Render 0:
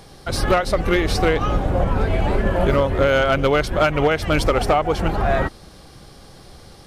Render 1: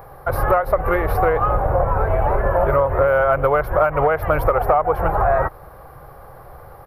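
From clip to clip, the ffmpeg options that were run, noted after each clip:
-af "firequalizer=gain_entry='entry(140,0);entry(210,-14);entry(500,5);entry(1100,8);entry(3200,-20);entry(7600,-28);entry(12000,7)':delay=0.05:min_phase=1,acompressor=threshold=0.158:ratio=3,volume=1.26"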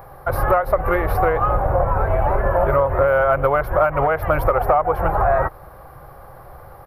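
-af "bandreject=f=450:w=12"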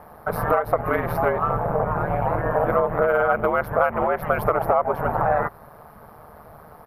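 -af "aeval=exprs='val(0)*sin(2*PI*77*n/s)':c=same,lowshelf=f=100:g=-9.5"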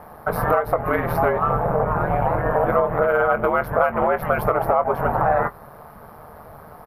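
-filter_complex "[0:a]asplit=2[s0][s1];[s1]alimiter=limit=0.237:level=0:latency=1:release=261,volume=1.06[s2];[s0][s2]amix=inputs=2:normalize=0,asplit=2[s3][s4];[s4]adelay=22,volume=0.282[s5];[s3][s5]amix=inputs=2:normalize=0,volume=0.668"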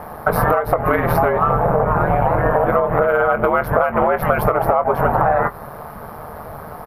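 -af "acompressor=threshold=0.0891:ratio=6,volume=2.82"

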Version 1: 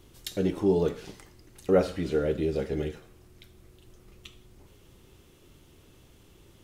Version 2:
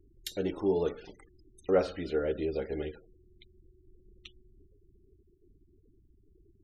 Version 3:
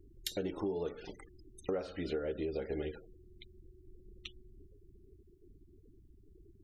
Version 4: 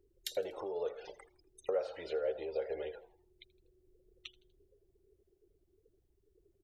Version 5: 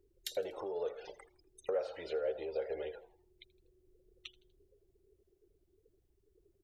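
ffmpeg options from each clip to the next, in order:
-af "afftfilt=real='re*gte(hypot(re,im),0.00562)':imag='im*gte(hypot(re,im),0.00562)':win_size=1024:overlap=0.75,equalizer=f=140:w=0.91:g=-9.5,volume=0.794"
-af "acompressor=threshold=0.0158:ratio=8,volume=1.41"
-filter_complex "[0:a]lowshelf=f=360:t=q:w=3:g=-12.5,asplit=4[s0][s1][s2][s3];[s1]adelay=81,afreqshift=130,volume=0.0794[s4];[s2]adelay=162,afreqshift=260,volume=0.0367[s5];[s3]adelay=243,afreqshift=390,volume=0.0168[s6];[s0][s4][s5][s6]amix=inputs=4:normalize=0,volume=0.794"
-af "asoftclip=type=tanh:threshold=0.075"

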